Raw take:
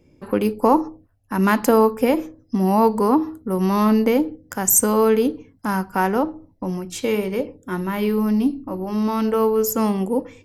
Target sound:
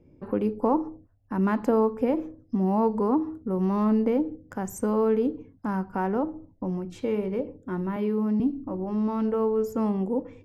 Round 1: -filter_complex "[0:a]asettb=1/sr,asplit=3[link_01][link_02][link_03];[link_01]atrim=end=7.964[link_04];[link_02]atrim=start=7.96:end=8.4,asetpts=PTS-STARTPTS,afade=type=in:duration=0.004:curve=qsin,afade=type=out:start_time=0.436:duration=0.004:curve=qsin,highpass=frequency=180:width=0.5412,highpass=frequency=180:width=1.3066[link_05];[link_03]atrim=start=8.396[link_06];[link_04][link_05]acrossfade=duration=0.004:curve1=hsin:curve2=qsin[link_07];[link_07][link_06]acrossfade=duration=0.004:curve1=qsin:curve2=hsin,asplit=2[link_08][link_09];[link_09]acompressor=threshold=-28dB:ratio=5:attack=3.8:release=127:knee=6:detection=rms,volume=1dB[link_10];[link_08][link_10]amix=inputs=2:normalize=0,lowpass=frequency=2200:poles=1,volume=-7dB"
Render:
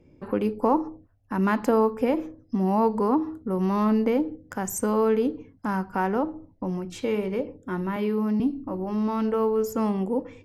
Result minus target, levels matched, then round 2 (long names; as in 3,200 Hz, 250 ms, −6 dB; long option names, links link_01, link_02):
2,000 Hz band +4.5 dB
-filter_complex "[0:a]asettb=1/sr,asplit=3[link_01][link_02][link_03];[link_01]atrim=end=7.964[link_04];[link_02]atrim=start=7.96:end=8.4,asetpts=PTS-STARTPTS,afade=type=in:duration=0.004:curve=qsin,afade=type=out:start_time=0.436:duration=0.004:curve=qsin,highpass=frequency=180:width=0.5412,highpass=frequency=180:width=1.3066[link_05];[link_03]atrim=start=8.396[link_06];[link_04][link_05]acrossfade=duration=0.004:curve1=hsin:curve2=qsin[link_07];[link_07][link_06]acrossfade=duration=0.004:curve1=qsin:curve2=hsin,asplit=2[link_08][link_09];[link_09]acompressor=threshold=-28dB:ratio=5:attack=3.8:release=127:knee=6:detection=rms,volume=1dB[link_10];[link_08][link_10]amix=inputs=2:normalize=0,lowpass=frequency=760:poles=1,volume=-7dB"